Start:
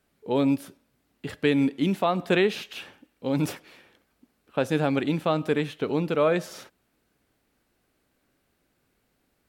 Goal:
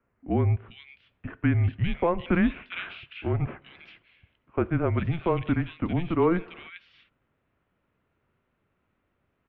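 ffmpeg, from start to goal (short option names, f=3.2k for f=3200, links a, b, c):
-filter_complex "[0:a]asettb=1/sr,asplit=3[a][b][c];[a]atrim=end=2.714[d];[b]atrim=start=2.71:end=3.33,asetpts=PTS-STARTPTS,afade=t=in:d=0.004:c=qsin,afade=t=out:st=0.616:d=0.004:c=qsin,equalizer=f=1.6k:w=1.6:g=12[e];[c]atrim=start=3.326[f];[d][e]acrossfade=d=0.004:c1=hsin:c2=qsin[g];[g][f]acrossfade=d=0.004:c1=qsin:c2=hsin,highpass=f=200:t=q:w=0.5412,highpass=f=200:t=q:w=1.307,lowpass=f=3.1k:t=q:w=0.5176,lowpass=f=3.1k:t=q:w=0.7071,lowpass=f=3.1k:t=q:w=1.932,afreqshift=-170,acrossover=split=2300[h][i];[i]adelay=400[j];[h][j]amix=inputs=2:normalize=0"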